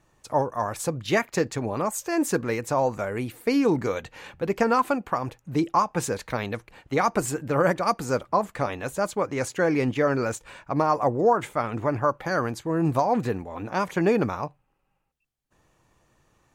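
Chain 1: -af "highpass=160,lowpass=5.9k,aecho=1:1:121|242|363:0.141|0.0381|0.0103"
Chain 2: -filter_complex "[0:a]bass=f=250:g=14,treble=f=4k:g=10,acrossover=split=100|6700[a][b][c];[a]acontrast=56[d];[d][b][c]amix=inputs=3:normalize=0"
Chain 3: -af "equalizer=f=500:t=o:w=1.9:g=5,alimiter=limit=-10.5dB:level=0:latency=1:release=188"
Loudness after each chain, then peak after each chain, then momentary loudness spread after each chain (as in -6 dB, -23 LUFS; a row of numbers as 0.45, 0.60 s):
-26.0, -20.0, -24.0 LUFS; -8.0, -4.0, -10.5 dBFS; 8, 7, 7 LU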